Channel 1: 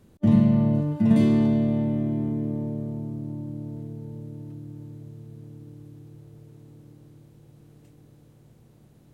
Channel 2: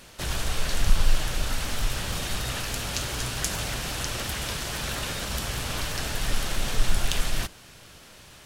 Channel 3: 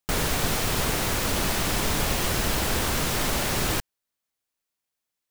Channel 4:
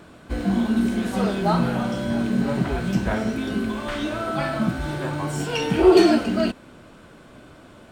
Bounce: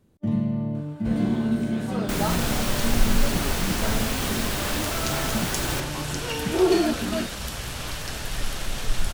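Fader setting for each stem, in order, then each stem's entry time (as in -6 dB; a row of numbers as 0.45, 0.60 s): -6.5, -2.0, -3.5, -6.0 dB; 0.00, 2.10, 2.00, 0.75 s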